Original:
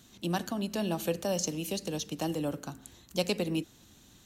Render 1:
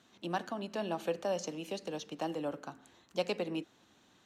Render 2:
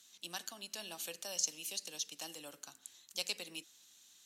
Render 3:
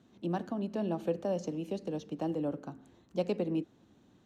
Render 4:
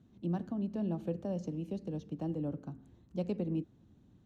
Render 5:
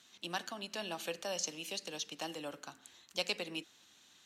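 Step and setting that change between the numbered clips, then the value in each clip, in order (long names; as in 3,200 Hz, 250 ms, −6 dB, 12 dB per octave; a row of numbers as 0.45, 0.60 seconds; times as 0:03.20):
resonant band-pass, frequency: 980, 7,000, 370, 130, 2,600 Hertz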